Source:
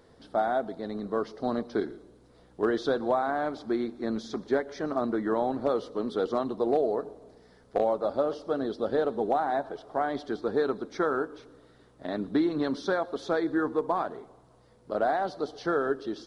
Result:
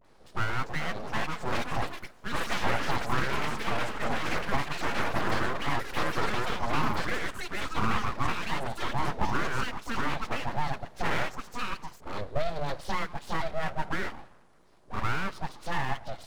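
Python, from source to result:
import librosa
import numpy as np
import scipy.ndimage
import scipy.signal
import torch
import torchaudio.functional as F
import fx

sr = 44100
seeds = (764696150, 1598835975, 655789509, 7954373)

y = fx.echo_pitch(x, sr, ms=460, semitones=6, count=3, db_per_echo=-3.0)
y = fx.dispersion(y, sr, late='highs', ms=48.0, hz=710.0)
y = np.abs(y)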